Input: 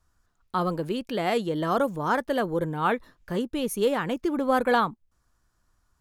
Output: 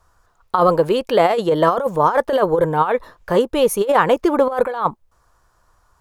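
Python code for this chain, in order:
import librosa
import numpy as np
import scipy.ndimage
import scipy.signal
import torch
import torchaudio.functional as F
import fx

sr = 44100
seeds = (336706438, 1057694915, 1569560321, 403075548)

y = fx.graphic_eq(x, sr, hz=(250, 500, 1000), db=(-7, 8, 8))
y = fx.over_compress(y, sr, threshold_db=-20.0, ratio=-0.5)
y = y * 10.0 ** (6.0 / 20.0)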